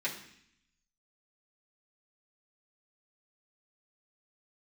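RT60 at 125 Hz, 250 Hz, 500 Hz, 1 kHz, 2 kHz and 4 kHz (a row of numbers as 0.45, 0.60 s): 1.0, 0.90, 0.65, 0.65, 0.85, 0.80 s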